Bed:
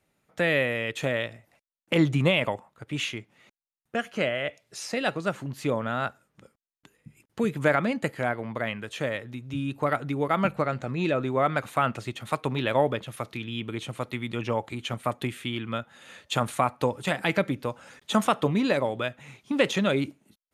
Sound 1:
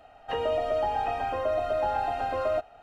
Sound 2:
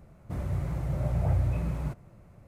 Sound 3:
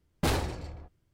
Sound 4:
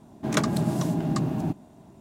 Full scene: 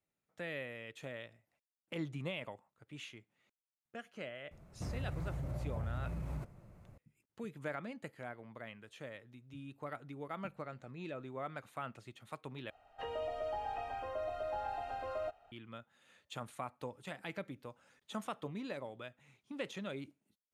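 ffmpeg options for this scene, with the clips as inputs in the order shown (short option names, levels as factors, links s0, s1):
-filter_complex "[0:a]volume=0.119[s0];[2:a]acompressor=threshold=0.0282:ratio=6:attack=3.2:release=140:knee=1:detection=peak[s1];[1:a]equalizer=f=240:t=o:w=1.4:g=-4.5[s2];[s0]asplit=2[s3][s4];[s3]atrim=end=12.704[s5];[s2]atrim=end=2.82,asetpts=PTS-STARTPTS,volume=0.266[s6];[s4]atrim=start=15.516[s7];[s1]atrim=end=2.47,asetpts=PTS-STARTPTS,volume=0.596,afade=t=in:d=0.004:c=hsin,afade=t=out:st=2.466:d=0.004:c=hsin,adelay=4510[s8];[s5][s6]acrossfade=d=0.004:c1=hsin:c2=hsin[s9];[s9][s7]acrossfade=d=0.004:c1=hsin:c2=hsin[s10];[s10][s8]amix=inputs=2:normalize=0"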